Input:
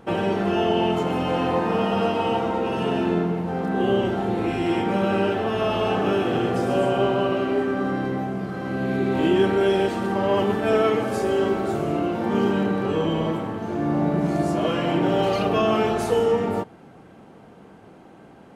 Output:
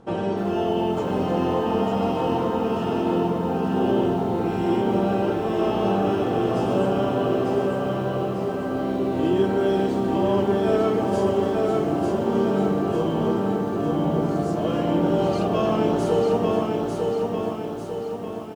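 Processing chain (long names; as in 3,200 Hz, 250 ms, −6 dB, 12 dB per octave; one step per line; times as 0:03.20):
low-pass filter 8,100 Hz 12 dB per octave
parametric band 2,200 Hz −8.5 dB 1.3 octaves
repeating echo 897 ms, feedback 51%, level −4 dB
feedback echo at a low word length 299 ms, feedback 55%, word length 7 bits, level −14 dB
level −1.5 dB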